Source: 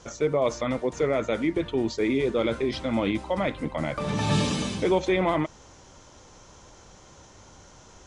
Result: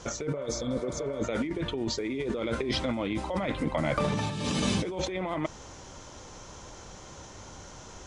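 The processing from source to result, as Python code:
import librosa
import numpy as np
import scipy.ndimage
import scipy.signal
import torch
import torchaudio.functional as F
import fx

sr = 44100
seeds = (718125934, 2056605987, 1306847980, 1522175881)

y = fx.over_compress(x, sr, threshold_db=-30.0, ratio=-1.0)
y = fx.spec_repair(y, sr, seeds[0], start_s=0.39, length_s=0.82, low_hz=570.0, high_hz=3200.0, source='before')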